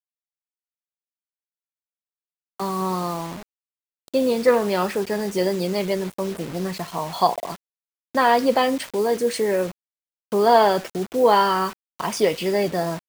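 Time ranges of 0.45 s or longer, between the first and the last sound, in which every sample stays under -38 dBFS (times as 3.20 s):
3.43–4.08 s
7.56–8.15 s
9.72–10.32 s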